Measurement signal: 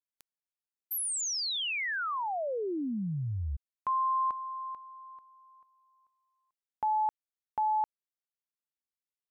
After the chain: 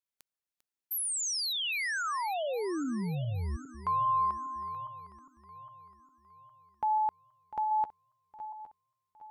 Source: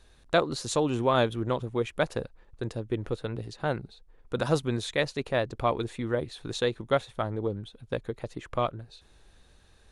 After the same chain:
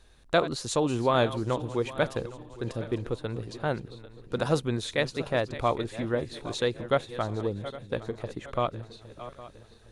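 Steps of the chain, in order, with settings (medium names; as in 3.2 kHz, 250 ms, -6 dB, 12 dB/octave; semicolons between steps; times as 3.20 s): backward echo that repeats 406 ms, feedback 62%, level -14 dB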